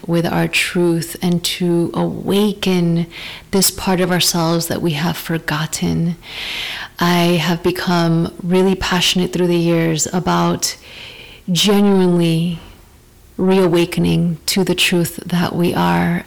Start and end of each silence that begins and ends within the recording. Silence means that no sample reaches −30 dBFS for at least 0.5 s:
0:12.71–0:13.39

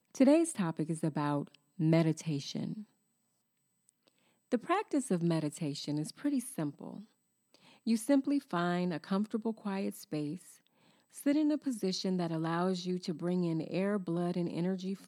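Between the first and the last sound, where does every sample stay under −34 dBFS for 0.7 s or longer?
0:02.73–0:04.52
0:06.94–0:07.87
0:10.34–0:11.21

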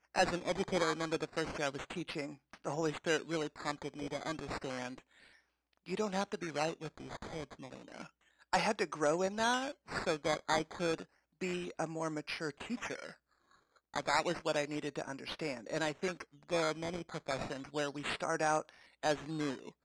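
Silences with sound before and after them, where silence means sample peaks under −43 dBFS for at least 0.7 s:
0:04.98–0:05.88
0:13.11–0:13.94

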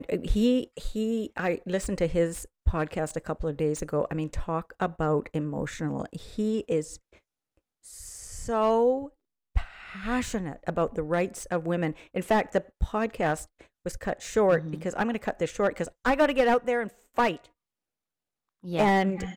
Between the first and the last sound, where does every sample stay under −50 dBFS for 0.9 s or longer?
0:17.46–0:18.63

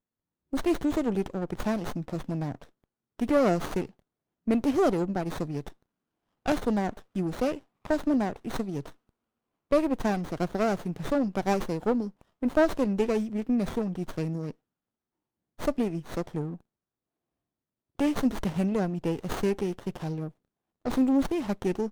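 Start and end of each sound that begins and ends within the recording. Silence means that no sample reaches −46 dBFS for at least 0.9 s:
0:15.59–0:16.61

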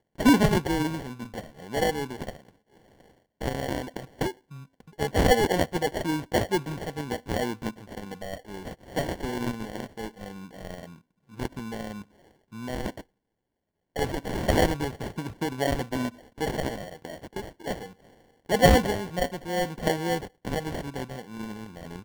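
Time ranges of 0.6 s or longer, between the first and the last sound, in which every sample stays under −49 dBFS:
0:13.02–0:13.96

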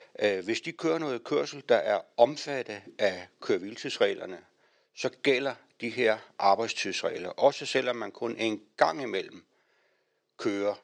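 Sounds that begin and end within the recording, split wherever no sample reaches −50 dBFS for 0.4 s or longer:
0:04.96–0:09.40

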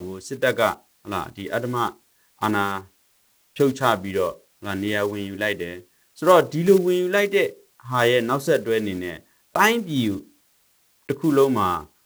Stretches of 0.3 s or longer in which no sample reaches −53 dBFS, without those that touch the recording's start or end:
0:02.90–0:03.55
0:10.36–0:11.09

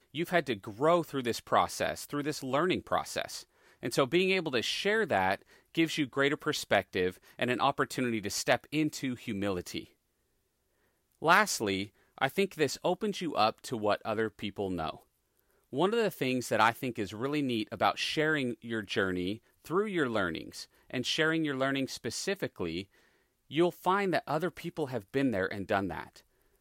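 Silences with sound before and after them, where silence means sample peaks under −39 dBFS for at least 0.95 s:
0:09.83–0:11.22

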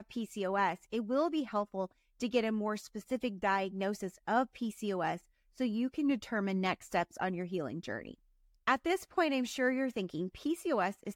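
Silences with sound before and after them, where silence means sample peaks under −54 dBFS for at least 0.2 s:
0:01.91–0:02.20
0:05.20–0:05.57
0:08.14–0:08.67

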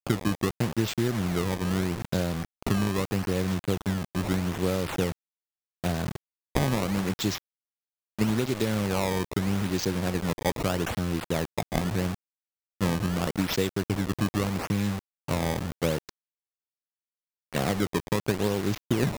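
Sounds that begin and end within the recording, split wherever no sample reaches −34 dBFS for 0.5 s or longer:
0:05.84–0:07.38
0:08.19–0:12.14
0:12.81–0:16.09

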